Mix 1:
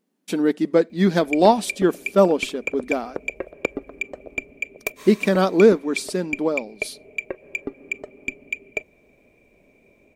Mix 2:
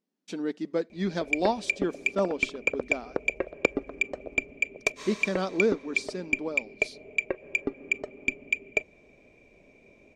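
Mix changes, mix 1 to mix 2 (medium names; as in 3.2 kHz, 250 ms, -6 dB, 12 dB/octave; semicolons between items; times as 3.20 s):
speech -11.5 dB; master: add resonant low-pass 5.9 kHz, resonance Q 1.5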